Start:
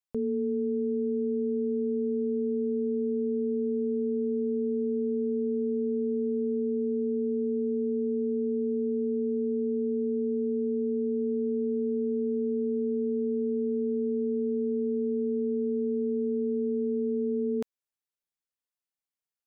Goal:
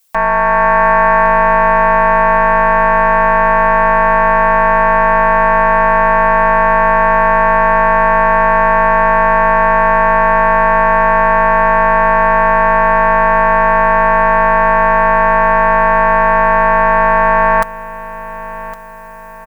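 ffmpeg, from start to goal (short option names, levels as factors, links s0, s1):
-filter_complex "[0:a]aeval=exprs='0.106*sin(PI/2*4.47*val(0)/0.106)':c=same,crystalizer=i=2:c=0,acontrast=87,aecho=1:1:4.4:0.65,asplit=2[s0][s1];[s1]aecho=0:1:1111|2222|3333|4444:0.168|0.0705|0.0296|0.0124[s2];[s0][s2]amix=inputs=2:normalize=0,dynaudnorm=f=220:g=5:m=1.68,lowshelf=f=200:g=-8.5"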